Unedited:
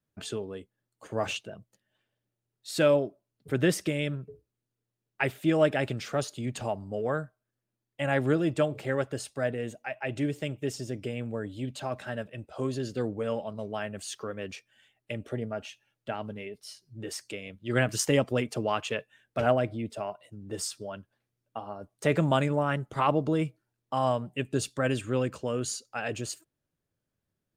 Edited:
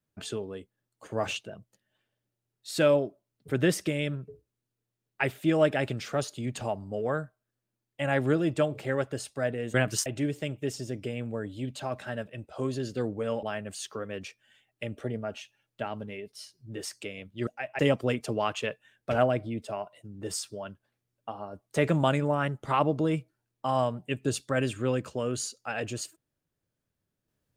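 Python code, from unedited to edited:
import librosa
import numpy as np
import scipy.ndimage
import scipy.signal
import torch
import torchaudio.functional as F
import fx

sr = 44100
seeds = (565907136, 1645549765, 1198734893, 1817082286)

y = fx.edit(x, sr, fx.swap(start_s=9.74, length_s=0.32, other_s=17.75, other_length_s=0.32),
    fx.cut(start_s=13.43, length_s=0.28), tone=tone)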